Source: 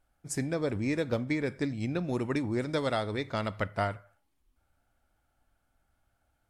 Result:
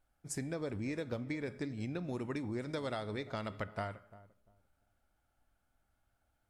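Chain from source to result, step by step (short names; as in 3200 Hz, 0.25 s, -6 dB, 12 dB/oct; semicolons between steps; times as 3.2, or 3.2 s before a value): resonator 210 Hz, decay 0.6 s, harmonics all, mix 40%; compressor 3:1, threshold -36 dBFS, peak gain reduction 6.5 dB; darkening echo 0.346 s, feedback 24%, low-pass 830 Hz, level -16.5 dB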